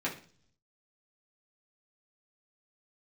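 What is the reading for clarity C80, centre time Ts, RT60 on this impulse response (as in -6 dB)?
15.5 dB, 19 ms, 0.45 s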